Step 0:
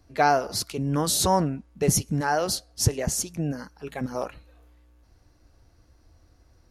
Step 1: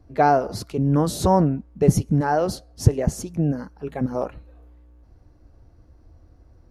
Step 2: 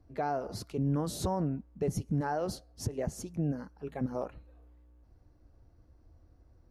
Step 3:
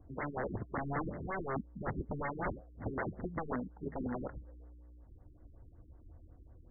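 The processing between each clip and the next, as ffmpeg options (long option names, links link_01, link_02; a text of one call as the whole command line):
ffmpeg -i in.wav -af "tiltshelf=frequency=1400:gain=8,volume=-1dB" out.wav
ffmpeg -i in.wav -af "alimiter=limit=-13.5dB:level=0:latency=1:release=128,volume=-9dB" out.wav
ffmpeg -i in.wav -af "aeval=exprs='(mod(39.8*val(0)+1,2)-1)/39.8':channel_layout=same,afftfilt=real='re*lt(b*sr/1024,390*pow(2200/390,0.5+0.5*sin(2*PI*5.4*pts/sr)))':imag='im*lt(b*sr/1024,390*pow(2200/390,0.5+0.5*sin(2*PI*5.4*pts/sr)))':win_size=1024:overlap=0.75,volume=4dB" out.wav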